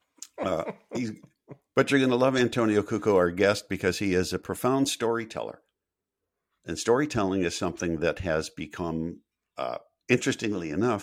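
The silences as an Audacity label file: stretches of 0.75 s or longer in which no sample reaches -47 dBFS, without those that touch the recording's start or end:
5.550000	6.660000	silence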